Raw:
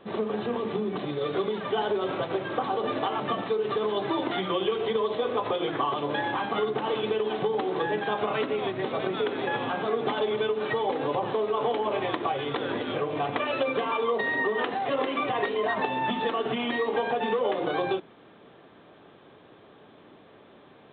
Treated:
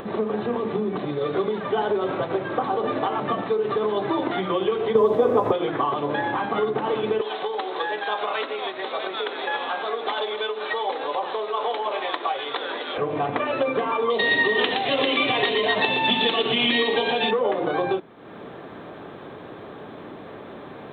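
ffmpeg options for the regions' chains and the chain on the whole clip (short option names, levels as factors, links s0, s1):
-filter_complex "[0:a]asettb=1/sr,asplit=3[s0][s1][s2];[s0]atrim=end=4.954[s3];[s1]atrim=start=4.95:end=5.52,asetpts=PTS-STARTPTS,afade=t=in:d=0.004:c=qsin,afade=t=out:st=0.566:d=0.004:c=qsin,tiltshelf=f=1400:g=7,aeval=exprs='sgn(val(0))*max(abs(val(0))-0.00158,0)':c=same[s4];[s2]atrim=start=5.516[s5];[s3][s4]acrossfade=d=0.004:c1=hsin:c2=qsin[s6];[s6][s5]acrossfade=d=0.004:c1=qsin:c2=hsin,asettb=1/sr,asplit=3[s7][s8][s9];[s7]atrim=end=7.214[s10];[s8]atrim=start=7.21:end=12.98,asetpts=PTS-STARTPTS,afade=t=in:d=0.004:c=qsin,afade=t=out:st=5.766:d=0.004:c=qsin,highpass=580,equalizer=f=3800:w=1.6:g=9[s11];[s9]atrim=start=12.976[s12];[s10][s11]acrossfade=d=0.004:c1=hsin:c2=qsin[s13];[s13][s12]acrossfade=d=0.004:c1=qsin:c2=hsin,asettb=1/sr,asplit=3[s14][s15][s16];[s14]atrim=end=14.104[s17];[s15]atrim=start=14.1:end=17.31,asetpts=PTS-STARTPTS,afade=t=in:d=0.004:c=qsin,afade=t=out:st=3.206:d=0.004:c=qsin,highshelf=f=2100:t=q:w=1.5:g=13.5,aecho=1:1:118:0.501,atrim=end_sample=141561[s18];[s16]atrim=start=17.306[s19];[s17][s18]acrossfade=d=0.004:c1=hsin:c2=qsin[s20];[s20][s19]acrossfade=d=0.004:c1=qsin:c2=hsin,equalizer=f=3100:t=o:w=0.79:g=-6,acompressor=mode=upward:threshold=0.0251:ratio=2.5,volume=1.58"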